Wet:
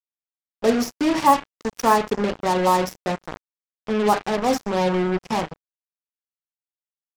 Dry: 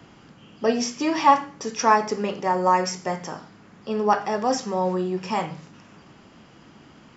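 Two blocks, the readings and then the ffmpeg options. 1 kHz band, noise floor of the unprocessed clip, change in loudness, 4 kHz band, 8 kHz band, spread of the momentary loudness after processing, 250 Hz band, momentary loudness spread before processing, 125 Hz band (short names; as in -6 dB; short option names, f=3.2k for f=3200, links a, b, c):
0.0 dB, -51 dBFS, +1.5 dB, +1.5 dB, n/a, 10 LU, +3.5 dB, 13 LU, +3.5 dB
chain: -af "tiltshelf=f=910:g=4.5,acrusher=bits=3:mix=0:aa=0.5"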